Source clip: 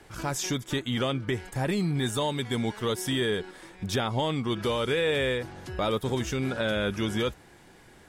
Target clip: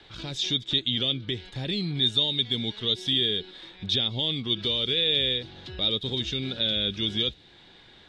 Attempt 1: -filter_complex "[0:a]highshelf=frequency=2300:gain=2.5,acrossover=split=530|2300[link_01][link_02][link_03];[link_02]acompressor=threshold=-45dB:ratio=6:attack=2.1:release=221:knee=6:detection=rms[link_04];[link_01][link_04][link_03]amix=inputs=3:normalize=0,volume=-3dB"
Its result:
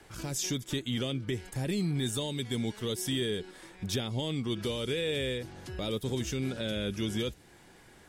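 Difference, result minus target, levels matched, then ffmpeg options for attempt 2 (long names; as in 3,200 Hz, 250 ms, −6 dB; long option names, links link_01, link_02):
4,000 Hz band −6.0 dB
-filter_complex "[0:a]lowpass=frequency=3700:width_type=q:width=7.1,highshelf=frequency=2300:gain=2.5,acrossover=split=530|2300[link_01][link_02][link_03];[link_02]acompressor=threshold=-45dB:ratio=6:attack=2.1:release=221:knee=6:detection=rms[link_04];[link_01][link_04][link_03]amix=inputs=3:normalize=0,volume=-3dB"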